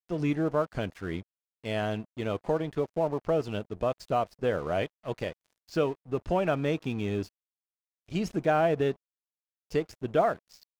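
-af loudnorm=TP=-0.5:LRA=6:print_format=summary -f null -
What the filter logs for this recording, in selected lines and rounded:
Input Integrated:    -29.9 LUFS
Input True Peak:     -13.4 dBTP
Input LRA:             1.9 LU
Input Threshold:     -40.3 LUFS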